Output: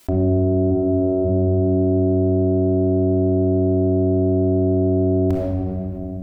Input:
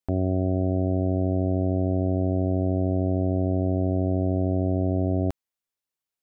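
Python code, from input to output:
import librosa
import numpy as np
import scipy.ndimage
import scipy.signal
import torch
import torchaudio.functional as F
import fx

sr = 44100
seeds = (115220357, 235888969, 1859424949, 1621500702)

y = fx.tracing_dist(x, sr, depth_ms=0.079)
y = fx.highpass(y, sr, hz=fx.line((0.7, 380.0), (1.24, 170.0)), slope=12, at=(0.7, 1.24), fade=0.02)
y = fx.room_shoebox(y, sr, seeds[0], volume_m3=2700.0, walls='mixed', distance_m=3.0)
y = fx.env_flatten(y, sr, amount_pct=50)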